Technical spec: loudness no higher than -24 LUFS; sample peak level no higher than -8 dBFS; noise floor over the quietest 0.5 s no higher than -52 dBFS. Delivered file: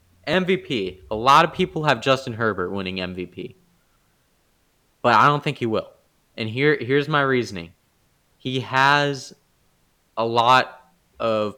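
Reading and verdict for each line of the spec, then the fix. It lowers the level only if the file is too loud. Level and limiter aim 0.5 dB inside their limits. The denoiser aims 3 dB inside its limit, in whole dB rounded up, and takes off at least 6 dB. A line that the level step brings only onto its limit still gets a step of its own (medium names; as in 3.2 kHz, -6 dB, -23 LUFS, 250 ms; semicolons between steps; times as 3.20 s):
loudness -20.5 LUFS: fail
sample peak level -4.5 dBFS: fail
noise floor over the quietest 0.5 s -64 dBFS: pass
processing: trim -4 dB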